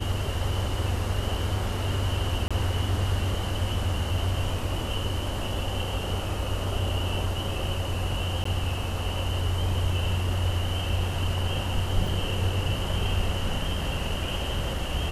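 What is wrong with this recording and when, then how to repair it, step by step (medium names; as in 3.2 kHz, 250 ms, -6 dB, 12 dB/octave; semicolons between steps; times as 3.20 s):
2.48–2.51 s: dropout 26 ms
8.44–8.45 s: dropout 14 ms
12.07 s: dropout 3.8 ms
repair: interpolate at 2.48 s, 26 ms; interpolate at 8.44 s, 14 ms; interpolate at 12.07 s, 3.8 ms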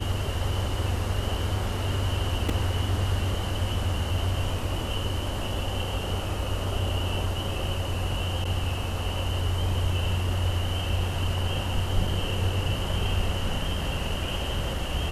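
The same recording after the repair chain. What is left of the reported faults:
nothing left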